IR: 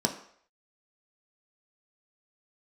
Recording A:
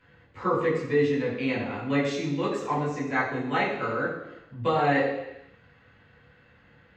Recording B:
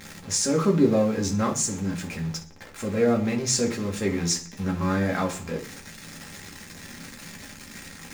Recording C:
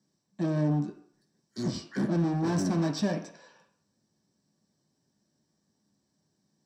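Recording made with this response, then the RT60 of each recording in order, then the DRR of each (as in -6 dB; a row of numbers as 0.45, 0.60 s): C; 0.90, 0.40, 0.60 s; -7.5, 0.0, 2.5 dB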